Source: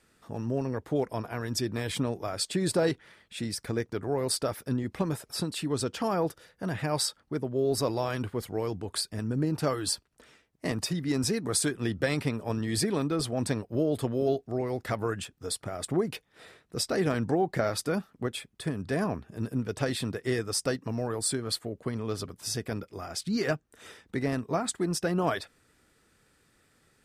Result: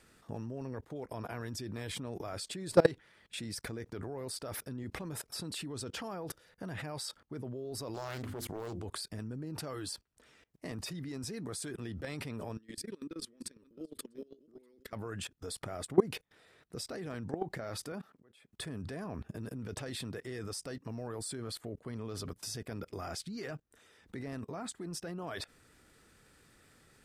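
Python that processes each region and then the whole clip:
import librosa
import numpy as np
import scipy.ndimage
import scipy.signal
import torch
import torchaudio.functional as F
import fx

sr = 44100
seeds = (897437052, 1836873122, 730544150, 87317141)

y = fx.chain(x, sr, fx.high_shelf(hz=5600.0, db=7.5),
    fx.hum_notches(base_hz=50, count=7),
    fx.doppler_dist(depth_ms=0.52), at=(7.94, 8.83))
y = fx.chain(y, sr, fx.level_steps(step_db=22),
    fx.fixed_phaser(hz=300.0, stages=4),
    fx.echo_single(ms=646, db=-16.0), at=(12.57, 14.93))
y = fx.chain(y, sr, fx.highpass(hz=260.0, slope=6),
    fx.high_shelf(hz=2800.0, db=-7.5),
    fx.auto_swell(attack_ms=491.0), at=(17.92, 18.52))
y = fx.low_shelf(y, sr, hz=82.0, db=2.5)
y = fx.level_steps(y, sr, step_db=23)
y = F.gain(torch.from_numpy(y), 5.5).numpy()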